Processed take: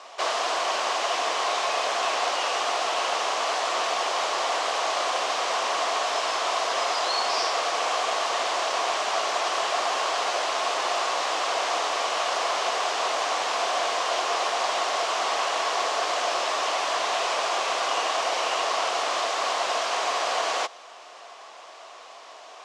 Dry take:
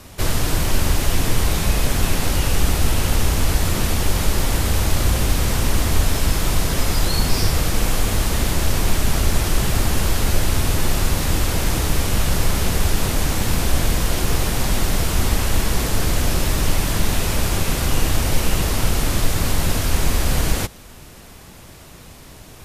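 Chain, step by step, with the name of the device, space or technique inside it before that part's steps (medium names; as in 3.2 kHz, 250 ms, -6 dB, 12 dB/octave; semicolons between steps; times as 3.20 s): phone speaker on a table (cabinet simulation 480–6500 Hz, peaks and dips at 700 Hz +10 dB, 1.1 kHz +10 dB, 3 kHz +3 dB); trim -2 dB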